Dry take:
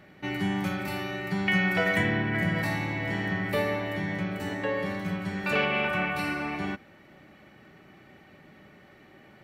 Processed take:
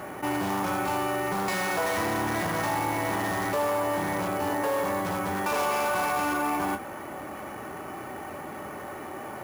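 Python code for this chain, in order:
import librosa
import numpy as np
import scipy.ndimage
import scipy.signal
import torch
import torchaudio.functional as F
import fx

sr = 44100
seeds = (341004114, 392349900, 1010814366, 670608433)

p1 = fx.tracing_dist(x, sr, depth_ms=0.13)
p2 = (np.mod(10.0 ** (26.0 / 20.0) * p1 + 1.0, 2.0) - 1.0) / 10.0 ** (26.0 / 20.0)
p3 = p1 + F.gain(torch.from_numpy(p2), -7.5).numpy()
p4 = fx.doubler(p3, sr, ms=24.0, db=-13)
p5 = np.clip(p4, -10.0 ** (-25.5 / 20.0), 10.0 ** (-25.5 / 20.0))
p6 = fx.graphic_eq_10(p5, sr, hz=(125, 1000, 2000, 4000), db=(-4, 9, -6, -8))
p7 = fx.sample_hold(p6, sr, seeds[0], rate_hz=12000.0, jitter_pct=0)
p8 = scipy.signal.sosfilt(scipy.signal.butter(2, 72.0, 'highpass', fs=sr, output='sos'), p7)
p9 = fx.peak_eq(p8, sr, hz=180.0, db=-8.0, octaves=0.7)
y = fx.env_flatten(p9, sr, amount_pct=50)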